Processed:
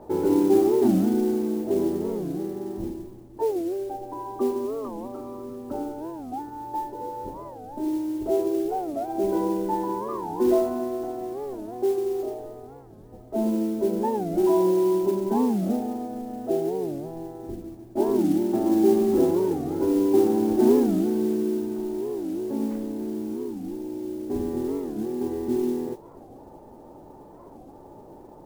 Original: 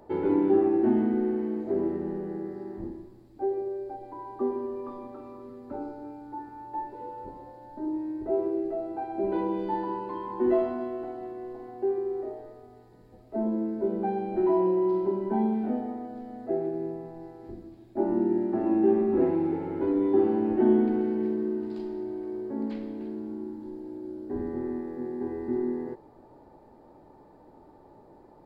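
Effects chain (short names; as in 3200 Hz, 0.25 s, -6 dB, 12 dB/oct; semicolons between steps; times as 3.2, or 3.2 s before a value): LPF 1200 Hz 12 dB/oct; in parallel at -1.5 dB: compressor, threshold -40 dBFS, peak gain reduction 21 dB; on the sum: modulation noise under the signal 25 dB; record warp 45 rpm, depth 250 cents; gain +2.5 dB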